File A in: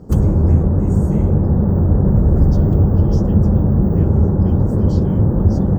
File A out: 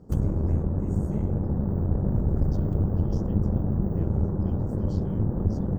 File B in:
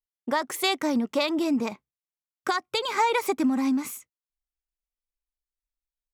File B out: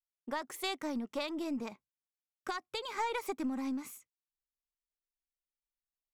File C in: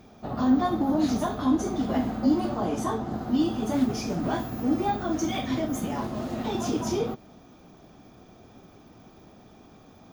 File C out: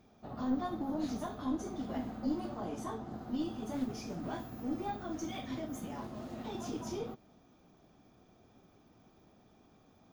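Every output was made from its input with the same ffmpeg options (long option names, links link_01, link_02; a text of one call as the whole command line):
ffmpeg -i in.wav -af "aeval=exprs='(tanh(1.78*val(0)+0.75)-tanh(0.75))/1.78':channel_layout=same,volume=-7.5dB" out.wav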